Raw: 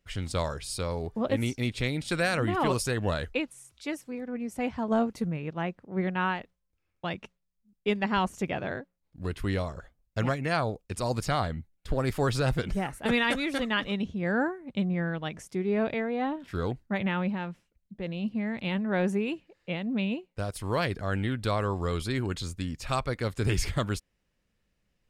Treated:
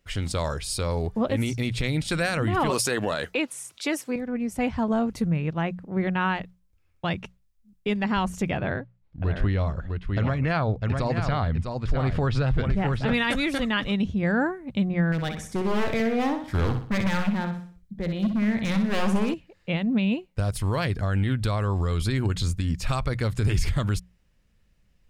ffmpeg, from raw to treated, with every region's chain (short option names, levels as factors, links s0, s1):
-filter_complex "[0:a]asettb=1/sr,asplit=3[s0][s1][s2];[s0]atrim=end=2.704[s3];[s1]atrim=start=2.7:end=4.16,asetpts=PTS-STARTPTS,afade=t=in:d=0.004:c=qsin,afade=t=out:st=1.456:d=0.004:c=qsin,highpass=280,acontrast=69[s4];[s2]atrim=start=4.156[s5];[s3][s4]acrossfade=d=0.004:c1=hsin:c2=qsin[s6];[s6][s5]acrossfade=d=0.004:c1=qsin:c2=hsin,asettb=1/sr,asplit=3[s7][s8][s9];[s7]atrim=end=8.574[s10];[s8]atrim=start=8.57:end=13.14,asetpts=PTS-STARTPTS,afade=t=in:d=0.004:c=qsin,afade=t=out:st=4.566:d=0.004:c=qsin,lowpass=3400,aecho=1:1:652:0.422,atrim=end_sample=201537[s11];[s9]atrim=start=13.136[s12];[s10][s11]acrossfade=d=0.004:c1=hsin:c2=qsin[s13];[s13][s12]acrossfade=d=0.004:c1=qsin:c2=hsin,asettb=1/sr,asplit=3[s14][s15][s16];[s14]atrim=end=15.124[s17];[s15]atrim=start=15.12:end=19.34,asetpts=PTS-STARTPTS,afade=t=in:d=0.004:c=qsin,afade=t=out:st=4.216:d=0.004:c=qsin,bandreject=f=2700:w=6,aeval=exprs='0.0531*(abs(mod(val(0)/0.0531+3,4)-2)-1)':c=same,aecho=1:1:62|124|186|248|310:0.422|0.169|0.0675|0.027|0.0108,atrim=end_sample=186102[s18];[s16]atrim=start=19.336[s19];[s17][s18]acrossfade=d=0.004:c1=hsin:c2=qsin[s20];[s20][s19]acrossfade=d=0.004:c1=qsin:c2=hsin,bandreject=f=60:t=h:w=6,bandreject=f=120:t=h:w=6,bandreject=f=180:t=h:w=6,asubboost=boost=2:cutoff=200,alimiter=limit=0.0944:level=0:latency=1:release=77,volume=1.88"